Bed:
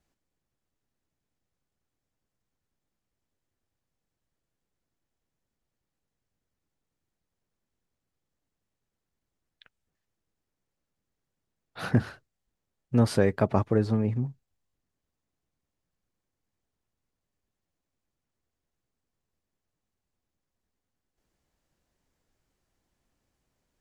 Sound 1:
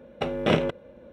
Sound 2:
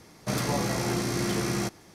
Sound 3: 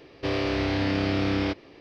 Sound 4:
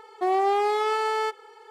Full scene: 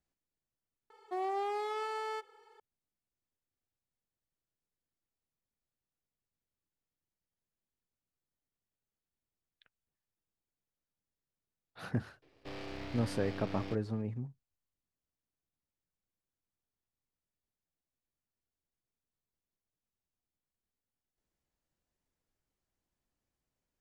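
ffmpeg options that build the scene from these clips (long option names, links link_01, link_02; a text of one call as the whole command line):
ffmpeg -i bed.wav -i cue0.wav -i cue1.wav -i cue2.wav -i cue3.wav -filter_complex "[0:a]volume=-11dB[link_01];[3:a]aeval=exprs='if(lt(val(0),0),0.251*val(0),val(0))':channel_layout=same[link_02];[4:a]atrim=end=1.7,asetpts=PTS-STARTPTS,volume=-12.5dB,afade=type=in:duration=0.004:curve=hsin,afade=type=out:start_time=1.696:duration=0.004:curve=hsin,adelay=900[link_03];[link_02]atrim=end=1.8,asetpts=PTS-STARTPTS,volume=-14dB,afade=type=in:duration=0.004:curve=hsin,afade=type=out:start_time=1.796:duration=0.004:curve=hsin,adelay=12220[link_04];[link_01][link_03][link_04]amix=inputs=3:normalize=0" out.wav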